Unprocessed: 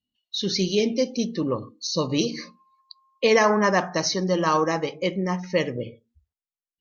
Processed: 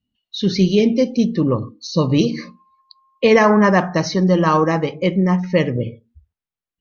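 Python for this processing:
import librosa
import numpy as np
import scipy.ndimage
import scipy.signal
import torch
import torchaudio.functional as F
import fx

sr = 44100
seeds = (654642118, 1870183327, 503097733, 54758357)

y = fx.bass_treble(x, sr, bass_db=8, treble_db=-10)
y = y * librosa.db_to_amplitude(5.0)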